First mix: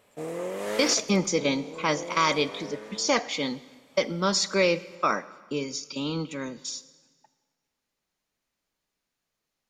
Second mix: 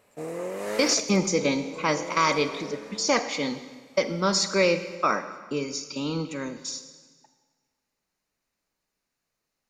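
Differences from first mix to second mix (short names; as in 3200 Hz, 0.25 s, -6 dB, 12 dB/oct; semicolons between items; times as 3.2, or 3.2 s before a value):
speech: send +8.0 dB; master: add bell 3300 Hz -8 dB 0.22 oct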